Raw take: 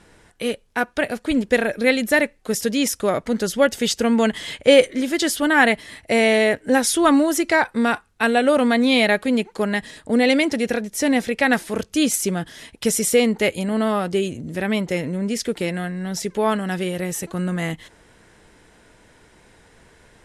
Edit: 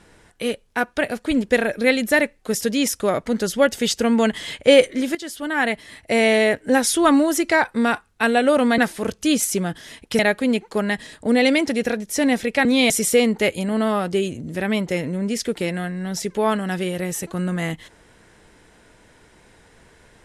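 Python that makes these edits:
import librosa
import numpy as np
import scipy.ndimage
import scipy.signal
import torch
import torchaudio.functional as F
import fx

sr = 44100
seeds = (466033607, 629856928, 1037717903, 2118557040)

y = fx.edit(x, sr, fx.fade_in_from(start_s=5.15, length_s=1.11, floor_db=-15.0),
    fx.swap(start_s=8.78, length_s=0.25, other_s=11.49, other_length_s=1.41), tone=tone)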